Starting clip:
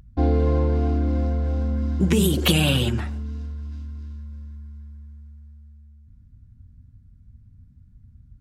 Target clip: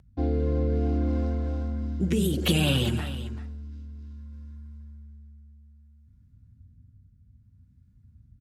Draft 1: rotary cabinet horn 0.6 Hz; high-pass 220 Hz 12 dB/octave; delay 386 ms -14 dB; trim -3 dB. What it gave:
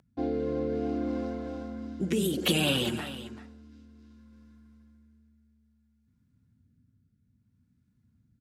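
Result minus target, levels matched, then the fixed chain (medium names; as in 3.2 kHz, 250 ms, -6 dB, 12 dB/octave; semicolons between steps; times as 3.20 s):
125 Hz band -7.5 dB
rotary cabinet horn 0.6 Hz; high-pass 60 Hz 12 dB/octave; delay 386 ms -14 dB; trim -3 dB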